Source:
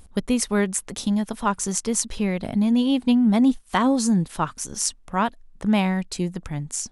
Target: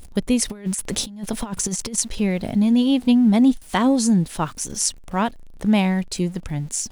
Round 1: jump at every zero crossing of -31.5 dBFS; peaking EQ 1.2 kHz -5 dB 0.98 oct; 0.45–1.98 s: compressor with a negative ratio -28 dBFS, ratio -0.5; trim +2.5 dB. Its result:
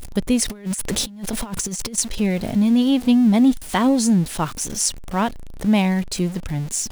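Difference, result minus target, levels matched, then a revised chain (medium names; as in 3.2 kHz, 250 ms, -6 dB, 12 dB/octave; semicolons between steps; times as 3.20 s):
jump at every zero crossing: distortion +10 dB
jump at every zero crossing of -42.5 dBFS; peaking EQ 1.2 kHz -5 dB 0.98 oct; 0.45–1.98 s: compressor with a negative ratio -28 dBFS, ratio -0.5; trim +2.5 dB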